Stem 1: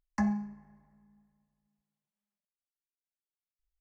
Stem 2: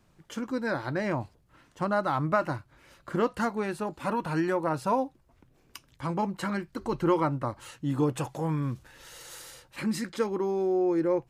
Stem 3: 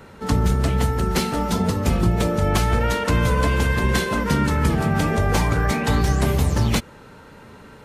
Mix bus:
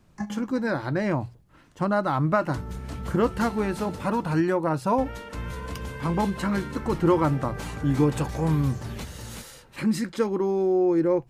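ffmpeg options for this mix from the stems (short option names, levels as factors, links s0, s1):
-filter_complex "[0:a]highshelf=f=4100:g=10,volume=0.841,asplit=2[s0][s1];[s1]volume=0.211[s2];[1:a]lowshelf=f=320:g=6,bandreject=f=60:t=h:w=6,bandreject=f=120:t=h:w=6,volume=1.19,asplit=2[s3][s4];[2:a]adelay=2250,volume=0.15,asplit=3[s5][s6][s7];[s5]atrim=end=4.04,asetpts=PTS-STARTPTS,afade=t=out:st=4.036:d=0.004:c=hsin[s8];[s6]atrim=start=4.04:end=4.98,asetpts=PTS-STARTPTS,volume=0[s9];[s7]atrim=start=4.98,asetpts=PTS-STARTPTS,afade=t=in:d=0.004:c=hsin[s10];[s8][s9][s10]concat=n=3:v=0:a=1,asplit=2[s11][s12];[s12]volume=0.596[s13];[s4]apad=whole_len=167851[s14];[s0][s14]sidechaingate=range=0.224:threshold=0.00355:ratio=16:detection=peak[s15];[s2][s13]amix=inputs=2:normalize=0,aecho=0:1:375:1[s16];[s15][s3][s11][s16]amix=inputs=4:normalize=0"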